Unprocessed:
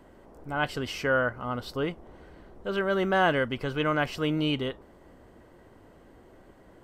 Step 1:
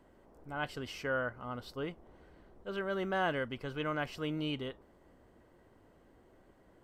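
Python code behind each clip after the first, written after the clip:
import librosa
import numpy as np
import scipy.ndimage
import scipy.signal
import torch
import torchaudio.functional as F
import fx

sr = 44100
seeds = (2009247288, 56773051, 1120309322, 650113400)

y = fx.attack_slew(x, sr, db_per_s=490.0)
y = y * librosa.db_to_amplitude(-9.0)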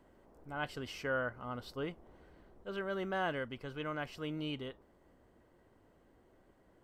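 y = fx.rider(x, sr, range_db=10, speed_s=2.0)
y = y * librosa.db_to_amplitude(-3.0)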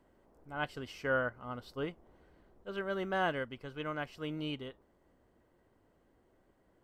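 y = fx.upward_expand(x, sr, threshold_db=-47.0, expansion=1.5)
y = y * librosa.db_to_amplitude(4.0)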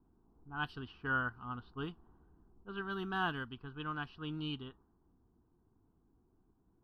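y = fx.env_lowpass(x, sr, base_hz=650.0, full_db=-31.5)
y = fx.fixed_phaser(y, sr, hz=2100.0, stages=6)
y = y * librosa.db_to_amplitude(1.5)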